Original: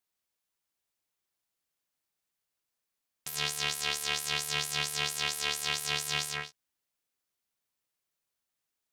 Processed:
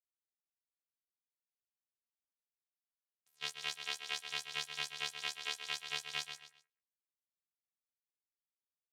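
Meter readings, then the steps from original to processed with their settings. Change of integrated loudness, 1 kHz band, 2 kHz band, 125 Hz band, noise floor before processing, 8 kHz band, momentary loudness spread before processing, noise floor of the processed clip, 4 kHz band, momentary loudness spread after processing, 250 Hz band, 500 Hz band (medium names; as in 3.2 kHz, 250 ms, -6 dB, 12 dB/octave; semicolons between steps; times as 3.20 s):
-9.0 dB, -10.0 dB, -8.0 dB, -19.5 dB, under -85 dBFS, -14.0 dB, 7 LU, under -85 dBFS, -8.0 dB, 4 LU, under -15 dB, -12.5 dB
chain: gate -29 dBFS, range -39 dB; feedback delay 130 ms, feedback 26%, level -9.5 dB; compression 1.5:1, threshold -40 dBFS, peak gain reduction 4 dB; high-pass 450 Hz 6 dB/octave; trim +2 dB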